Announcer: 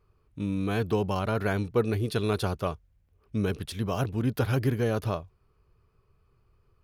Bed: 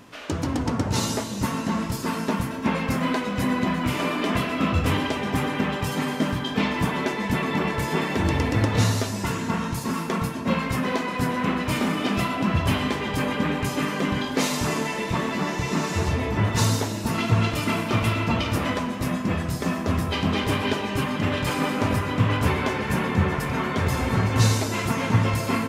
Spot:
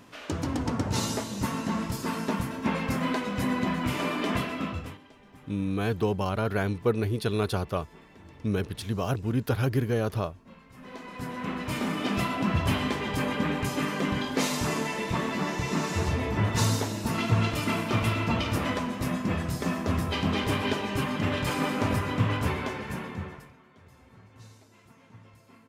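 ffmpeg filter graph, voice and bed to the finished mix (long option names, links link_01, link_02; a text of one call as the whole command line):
ffmpeg -i stem1.wav -i stem2.wav -filter_complex "[0:a]adelay=5100,volume=0dB[link_01];[1:a]volume=20.5dB,afade=type=out:start_time=4.35:duration=0.63:silence=0.0630957,afade=type=in:start_time=10.72:duration=1.49:silence=0.0595662,afade=type=out:start_time=22.09:duration=1.47:silence=0.0398107[link_02];[link_01][link_02]amix=inputs=2:normalize=0" out.wav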